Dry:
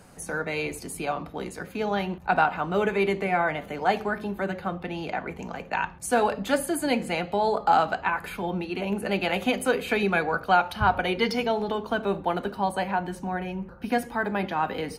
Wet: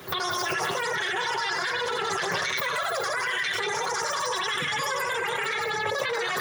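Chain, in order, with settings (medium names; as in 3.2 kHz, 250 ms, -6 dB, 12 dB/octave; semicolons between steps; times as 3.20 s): chunks repeated in reverse 245 ms, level -2 dB; chorus voices 6, 0.3 Hz, delay 16 ms, depth 3.4 ms; peak limiter -23 dBFS, peak gain reduction 12.5 dB; on a send: repeats whose band climbs or falls 218 ms, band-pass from 620 Hz, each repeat 1.4 oct, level -2 dB; on the sum: speed mistake 33 rpm record played at 78 rpm; in parallel at +1.5 dB: compressor with a negative ratio -37 dBFS, ratio -0.5; on the sum: high-pass 82 Hz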